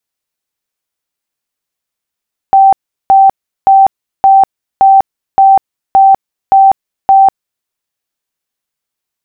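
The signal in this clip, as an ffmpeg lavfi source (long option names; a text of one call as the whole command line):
ffmpeg -f lavfi -i "aevalsrc='0.841*sin(2*PI*778*mod(t,0.57))*lt(mod(t,0.57),153/778)':duration=5.13:sample_rate=44100" out.wav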